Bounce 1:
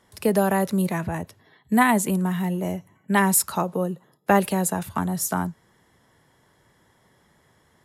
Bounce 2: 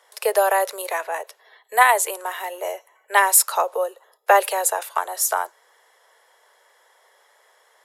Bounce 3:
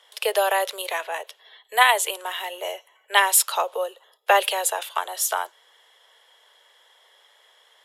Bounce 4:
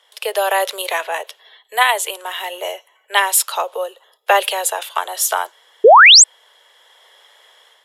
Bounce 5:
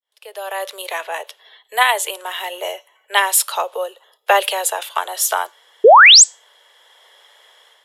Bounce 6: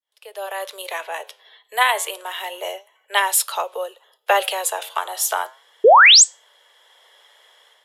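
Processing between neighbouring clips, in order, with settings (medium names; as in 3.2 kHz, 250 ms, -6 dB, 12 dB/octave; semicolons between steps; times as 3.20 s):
steep high-pass 460 Hz 48 dB/octave; trim +5.5 dB
peaking EQ 3.2 kHz +14.5 dB 0.69 oct; trim -3.5 dB
painted sound rise, 5.84–6.24 s, 390–8500 Hz -10 dBFS; level rider gain up to 7.5 dB
fade-in on the opening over 1.52 s; feedback comb 290 Hz, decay 0.29 s, harmonics all, mix 30%; trim +2.5 dB
flange 0.31 Hz, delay 3 ms, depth 8 ms, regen +88%; trim +1.5 dB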